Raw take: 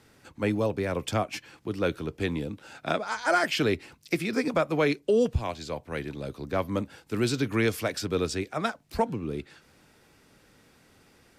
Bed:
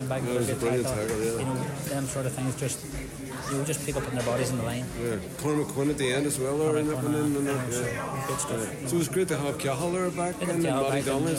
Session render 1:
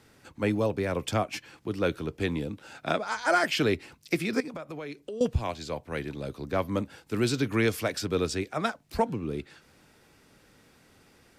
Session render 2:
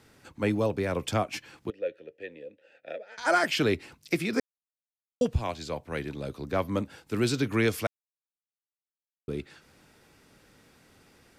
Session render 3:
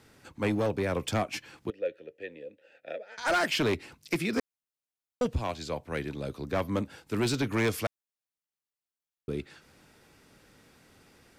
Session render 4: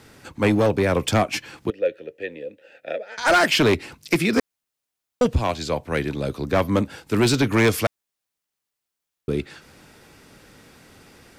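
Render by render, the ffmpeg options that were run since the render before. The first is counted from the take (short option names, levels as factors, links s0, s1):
-filter_complex "[0:a]asettb=1/sr,asplit=3[s0][s1][s2];[s0]atrim=end=4.404[s3];[s1]atrim=start=4.4:end=5.21,asetpts=PTS-STARTPTS,afade=t=in:d=0.004:c=qsin,afade=t=out:st=0.806:d=0.004:c=qsin,acompressor=threshold=0.0158:ratio=5:attack=3.2:release=140:knee=1:detection=peak[s4];[s2]atrim=start=5.206[s5];[s3][s4]acrossfade=d=0.004:c1=hsin:c2=qsin[s6];[s6][s5]acrossfade=d=0.004:c1=qsin:c2=hsin"
-filter_complex "[0:a]asettb=1/sr,asplit=3[s0][s1][s2];[s0]atrim=end=1.704[s3];[s1]atrim=start=1.7:end=3.18,asetpts=PTS-STARTPTS,afade=t=in:d=0.004:c=qsin,afade=t=out:st=1.476:d=0.004:c=qsin,asplit=3[s4][s5][s6];[s4]bandpass=f=530:t=q:w=8,volume=1[s7];[s5]bandpass=f=1840:t=q:w=8,volume=0.501[s8];[s6]bandpass=f=2480:t=q:w=8,volume=0.355[s9];[s7][s8][s9]amix=inputs=3:normalize=0[s10];[s2]atrim=start=3.176[s11];[s3][s10]acrossfade=d=0.004:c1=hsin:c2=qsin[s12];[s12][s11]acrossfade=d=0.004:c1=qsin:c2=hsin,asplit=5[s13][s14][s15][s16][s17];[s13]atrim=end=4.4,asetpts=PTS-STARTPTS,afade=t=out:st=4.396:d=0.004:c=hsin[s18];[s14]atrim=start=4.4:end=5.21,asetpts=PTS-STARTPTS,volume=0[s19];[s15]atrim=start=5.21:end=7.87,asetpts=PTS-STARTPTS,afade=t=in:d=0.004:c=hsin,afade=t=out:st=2.656:d=0.004:c=hsin[s20];[s16]atrim=start=7.87:end=9.28,asetpts=PTS-STARTPTS,volume=0[s21];[s17]atrim=start=9.28,asetpts=PTS-STARTPTS,afade=t=in:d=0.004:c=hsin[s22];[s18][s19][s20][s21][s22]concat=n=5:v=0:a=1"
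-af "volume=12.6,asoftclip=hard,volume=0.0794"
-af "volume=2.99"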